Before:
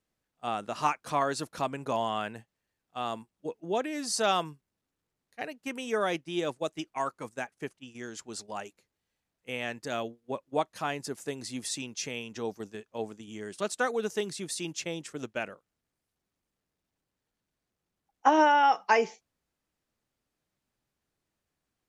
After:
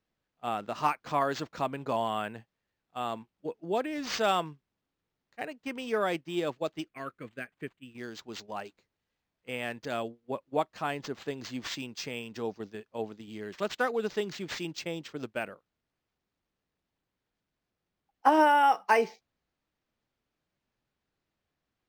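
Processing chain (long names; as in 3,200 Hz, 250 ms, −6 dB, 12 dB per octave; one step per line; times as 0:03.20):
0:06.88–0:07.98: phaser with its sweep stopped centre 2,100 Hz, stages 4
linearly interpolated sample-rate reduction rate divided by 4×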